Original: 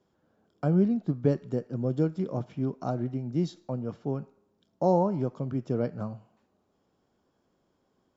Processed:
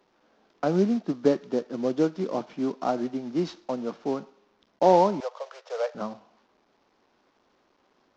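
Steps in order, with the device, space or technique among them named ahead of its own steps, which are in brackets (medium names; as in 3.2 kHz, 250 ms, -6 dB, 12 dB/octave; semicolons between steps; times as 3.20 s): early wireless headset (high-pass 220 Hz 24 dB/octave; CVSD coder 32 kbps); 5.20–5.95 s: steep high-pass 480 Hz 72 dB/octave; peaking EQ 1 kHz +5 dB 1.3 oct; trim +4 dB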